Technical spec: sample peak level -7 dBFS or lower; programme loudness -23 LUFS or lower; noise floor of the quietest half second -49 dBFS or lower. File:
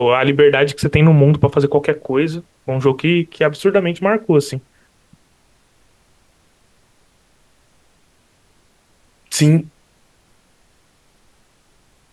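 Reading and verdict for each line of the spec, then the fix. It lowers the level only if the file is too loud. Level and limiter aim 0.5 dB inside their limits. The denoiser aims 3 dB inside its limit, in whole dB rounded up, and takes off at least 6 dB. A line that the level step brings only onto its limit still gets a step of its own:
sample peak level -2.0 dBFS: fail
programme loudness -15.5 LUFS: fail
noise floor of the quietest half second -56 dBFS: OK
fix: gain -8 dB

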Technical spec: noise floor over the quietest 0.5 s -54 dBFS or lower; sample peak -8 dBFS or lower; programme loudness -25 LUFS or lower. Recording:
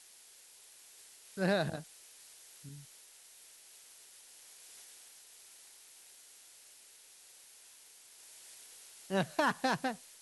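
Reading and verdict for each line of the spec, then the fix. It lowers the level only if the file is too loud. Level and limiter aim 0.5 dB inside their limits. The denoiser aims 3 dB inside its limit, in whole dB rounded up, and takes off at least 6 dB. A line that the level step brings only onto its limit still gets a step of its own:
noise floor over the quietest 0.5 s -59 dBFS: OK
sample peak -16.5 dBFS: OK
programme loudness -35.0 LUFS: OK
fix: none

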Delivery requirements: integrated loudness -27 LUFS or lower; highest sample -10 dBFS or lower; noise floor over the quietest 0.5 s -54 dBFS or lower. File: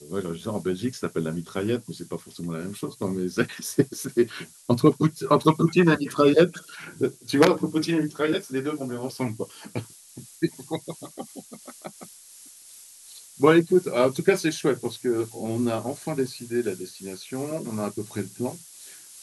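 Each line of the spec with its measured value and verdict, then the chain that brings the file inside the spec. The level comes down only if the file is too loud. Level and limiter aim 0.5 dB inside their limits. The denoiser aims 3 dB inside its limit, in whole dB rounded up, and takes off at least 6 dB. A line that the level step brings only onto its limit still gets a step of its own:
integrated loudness -25.0 LUFS: fail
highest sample -5.5 dBFS: fail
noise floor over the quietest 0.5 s -48 dBFS: fail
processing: denoiser 7 dB, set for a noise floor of -48 dBFS; gain -2.5 dB; limiter -10.5 dBFS

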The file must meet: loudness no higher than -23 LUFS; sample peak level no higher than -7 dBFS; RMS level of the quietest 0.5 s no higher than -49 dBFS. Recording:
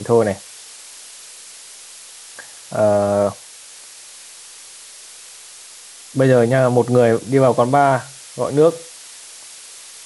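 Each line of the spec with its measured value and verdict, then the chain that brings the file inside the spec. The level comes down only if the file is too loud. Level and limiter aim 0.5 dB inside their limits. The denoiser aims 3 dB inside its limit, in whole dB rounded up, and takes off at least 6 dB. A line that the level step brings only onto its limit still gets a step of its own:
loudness -16.5 LUFS: fail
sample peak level -2.5 dBFS: fail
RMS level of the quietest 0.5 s -40 dBFS: fail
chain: denoiser 6 dB, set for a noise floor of -40 dBFS; gain -7 dB

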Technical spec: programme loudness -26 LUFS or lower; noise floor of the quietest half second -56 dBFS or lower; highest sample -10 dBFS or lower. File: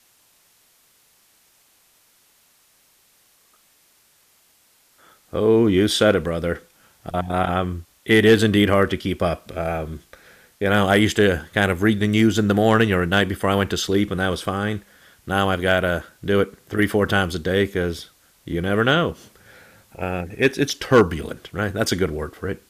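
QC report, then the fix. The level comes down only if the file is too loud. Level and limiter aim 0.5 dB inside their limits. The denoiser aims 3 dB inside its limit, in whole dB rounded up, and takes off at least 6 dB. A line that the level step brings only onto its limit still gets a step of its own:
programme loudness -20.5 LUFS: fail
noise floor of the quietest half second -59 dBFS: OK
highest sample -5.0 dBFS: fail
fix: gain -6 dB

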